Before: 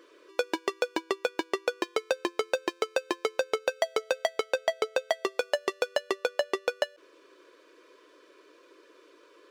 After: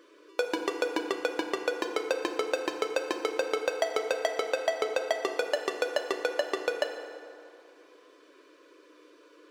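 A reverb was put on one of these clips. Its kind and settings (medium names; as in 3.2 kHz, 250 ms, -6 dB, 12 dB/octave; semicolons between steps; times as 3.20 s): FDN reverb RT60 2.4 s, low-frequency decay 1×, high-frequency decay 0.6×, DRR 4 dB; trim -1.5 dB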